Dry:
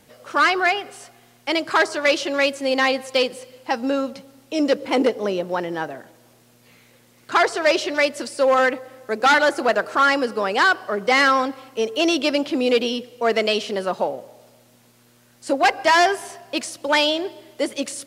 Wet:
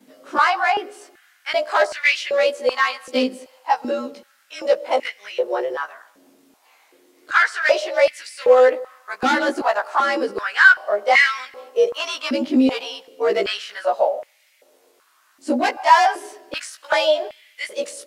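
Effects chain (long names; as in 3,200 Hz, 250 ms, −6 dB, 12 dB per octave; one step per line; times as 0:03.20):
every overlapping window played backwards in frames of 39 ms
high-pass on a step sequencer 2.6 Hz 250–2,100 Hz
level −1 dB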